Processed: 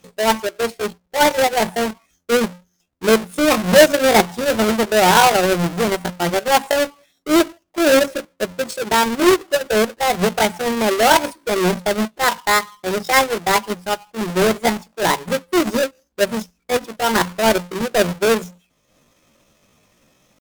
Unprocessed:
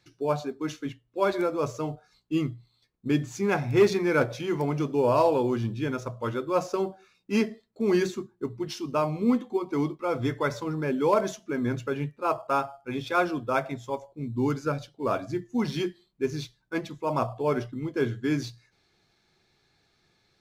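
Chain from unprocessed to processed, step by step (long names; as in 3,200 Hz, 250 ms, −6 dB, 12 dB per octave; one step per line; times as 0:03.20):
each half-wave held at its own peak
transient designer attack 0 dB, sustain −7 dB
pitch shifter +7 semitones
level +6.5 dB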